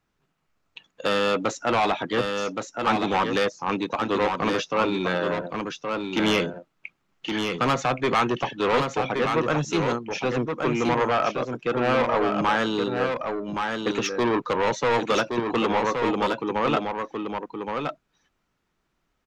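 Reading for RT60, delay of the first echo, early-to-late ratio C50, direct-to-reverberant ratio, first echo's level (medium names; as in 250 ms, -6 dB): no reverb, 1121 ms, no reverb, no reverb, -5.0 dB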